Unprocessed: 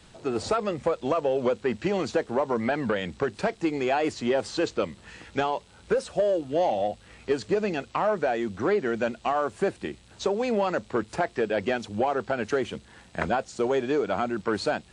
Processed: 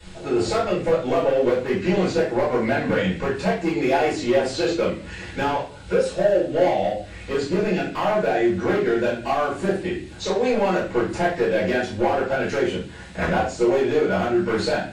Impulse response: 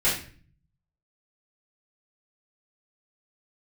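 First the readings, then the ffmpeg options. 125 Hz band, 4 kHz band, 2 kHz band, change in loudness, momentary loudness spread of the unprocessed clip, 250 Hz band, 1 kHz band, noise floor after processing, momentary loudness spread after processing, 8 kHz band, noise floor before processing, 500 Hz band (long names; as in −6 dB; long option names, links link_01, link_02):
+8.5 dB, +5.5 dB, +6.0 dB, +5.0 dB, 6 LU, +6.0 dB, +3.5 dB, −39 dBFS, 6 LU, +5.0 dB, −54 dBFS, +5.0 dB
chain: -filter_complex "[0:a]asplit=2[link_01][link_02];[link_02]acompressor=threshold=-42dB:ratio=6,volume=-1dB[link_03];[link_01][link_03]amix=inputs=2:normalize=0,asoftclip=type=hard:threshold=-19.5dB[link_04];[1:a]atrim=start_sample=2205[link_05];[link_04][link_05]afir=irnorm=-1:irlink=0,volume=-8dB"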